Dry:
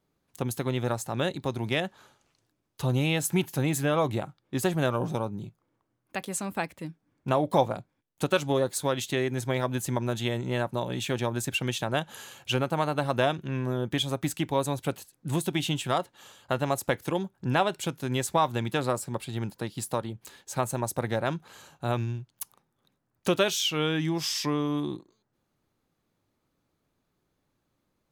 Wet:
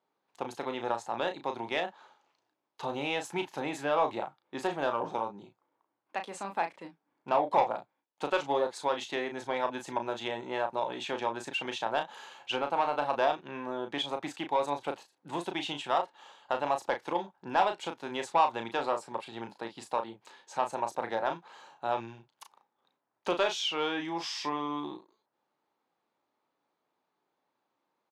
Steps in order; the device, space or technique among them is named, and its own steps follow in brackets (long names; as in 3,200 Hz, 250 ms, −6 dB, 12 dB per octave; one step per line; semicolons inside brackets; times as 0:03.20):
intercom (band-pass filter 360–4,400 Hz; parametric band 880 Hz +8.5 dB 0.58 octaves; soft clipping −12.5 dBFS, distortion −18 dB; double-tracking delay 35 ms −7 dB)
level −3.5 dB